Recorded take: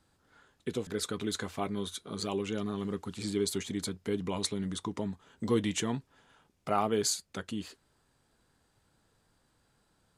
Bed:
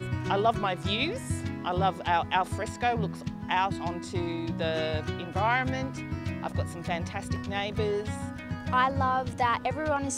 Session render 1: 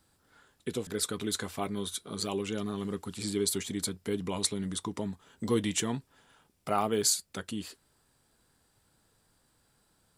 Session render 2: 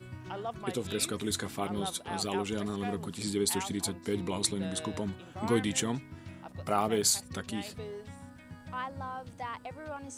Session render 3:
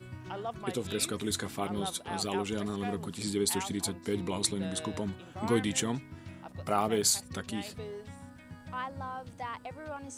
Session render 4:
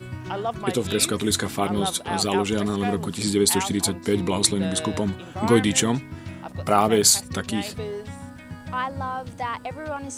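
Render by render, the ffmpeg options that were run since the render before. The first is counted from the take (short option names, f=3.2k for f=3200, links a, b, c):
-af "highshelf=f=6.9k:g=10.5,bandreject=f=6.5k:w=17"
-filter_complex "[1:a]volume=-13dB[a];[0:a][a]amix=inputs=2:normalize=0"
-af anull
-af "volume=10dB"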